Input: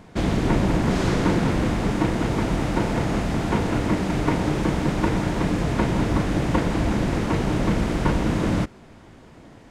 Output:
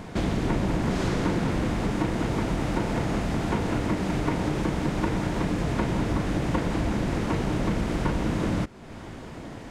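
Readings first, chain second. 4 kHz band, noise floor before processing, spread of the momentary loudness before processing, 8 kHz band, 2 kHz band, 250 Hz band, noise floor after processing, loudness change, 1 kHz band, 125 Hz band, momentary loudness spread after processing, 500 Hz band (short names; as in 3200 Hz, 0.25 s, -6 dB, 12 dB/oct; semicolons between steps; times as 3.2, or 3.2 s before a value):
-4.0 dB, -47 dBFS, 2 LU, -4.0 dB, -4.0 dB, -4.0 dB, -40 dBFS, -4.0 dB, -4.0 dB, -4.0 dB, 2 LU, -4.0 dB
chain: compressor 2:1, threshold -40 dBFS, peak gain reduction 13 dB; gain +7.5 dB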